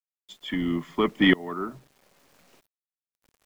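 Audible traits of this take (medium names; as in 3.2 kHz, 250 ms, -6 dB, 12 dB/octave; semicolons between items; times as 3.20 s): tremolo saw up 0.75 Hz, depth 95%; a quantiser's noise floor 10-bit, dither none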